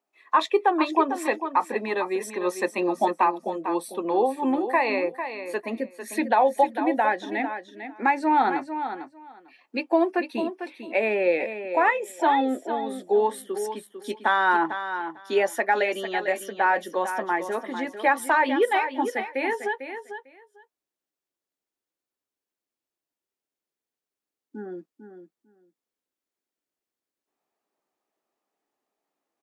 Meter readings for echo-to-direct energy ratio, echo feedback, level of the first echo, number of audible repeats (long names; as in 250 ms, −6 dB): −9.5 dB, 15%, −9.5 dB, 2